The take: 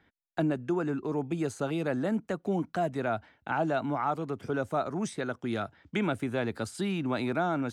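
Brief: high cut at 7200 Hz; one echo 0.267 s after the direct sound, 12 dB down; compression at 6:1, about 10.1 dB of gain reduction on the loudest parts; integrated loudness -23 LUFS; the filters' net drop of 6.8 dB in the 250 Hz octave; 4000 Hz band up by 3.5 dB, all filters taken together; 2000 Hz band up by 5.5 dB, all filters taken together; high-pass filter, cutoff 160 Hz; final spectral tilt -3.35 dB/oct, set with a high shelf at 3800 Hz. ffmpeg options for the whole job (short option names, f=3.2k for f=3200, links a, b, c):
-af "highpass=160,lowpass=7.2k,equalizer=f=250:t=o:g=-8.5,equalizer=f=2k:t=o:g=8.5,highshelf=f=3.8k:g=-5.5,equalizer=f=4k:t=o:g=4.5,acompressor=threshold=-35dB:ratio=6,aecho=1:1:267:0.251,volume=16.5dB"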